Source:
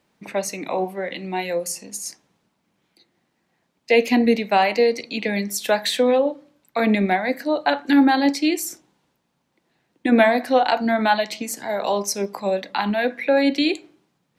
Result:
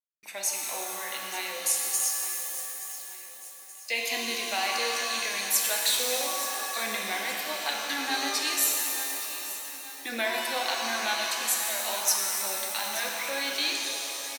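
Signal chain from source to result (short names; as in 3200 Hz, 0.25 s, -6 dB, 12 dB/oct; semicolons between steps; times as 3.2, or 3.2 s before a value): differentiator; in parallel at -3 dB: compressor, threshold -40 dBFS, peak gain reduction 17.5 dB; on the sum: gate with hold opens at -48 dBFS; bit-crush 12-bit; on a send: feedback echo 0.876 s, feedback 47%, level -14 dB; on the sum: shimmer reverb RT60 2.7 s, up +7 st, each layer -2 dB, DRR 0 dB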